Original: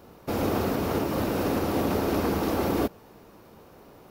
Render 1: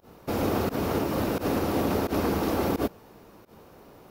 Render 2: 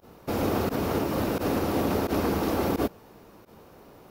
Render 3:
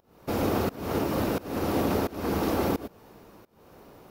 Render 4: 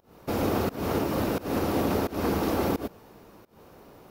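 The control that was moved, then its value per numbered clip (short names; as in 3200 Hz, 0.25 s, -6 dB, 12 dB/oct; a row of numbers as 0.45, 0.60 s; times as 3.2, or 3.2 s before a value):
pump, release: 94, 62, 387, 238 ms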